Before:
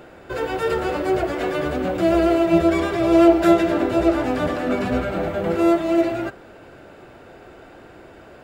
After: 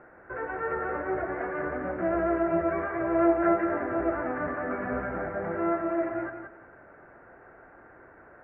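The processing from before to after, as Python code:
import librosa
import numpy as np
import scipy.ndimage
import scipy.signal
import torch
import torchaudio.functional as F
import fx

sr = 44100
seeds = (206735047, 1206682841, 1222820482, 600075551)

p1 = scipy.signal.sosfilt(scipy.signal.butter(8, 1900.0, 'lowpass', fs=sr, output='sos'), x)
p2 = fx.tilt_shelf(p1, sr, db=-6.5, hz=970.0)
p3 = p2 + fx.echo_feedback(p2, sr, ms=176, feedback_pct=22, wet_db=-6.5, dry=0)
y = p3 * 10.0 ** (-6.5 / 20.0)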